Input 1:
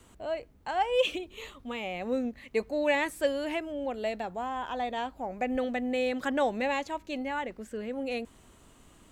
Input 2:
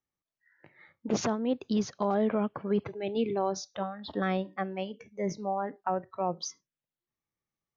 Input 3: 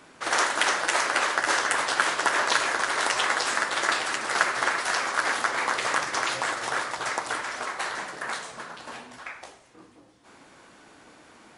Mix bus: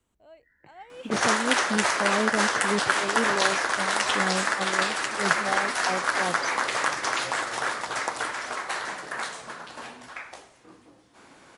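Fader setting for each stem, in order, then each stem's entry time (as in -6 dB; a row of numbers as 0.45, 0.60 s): -18.5, 0.0, 0.0 dB; 0.00, 0.00, 0.90 s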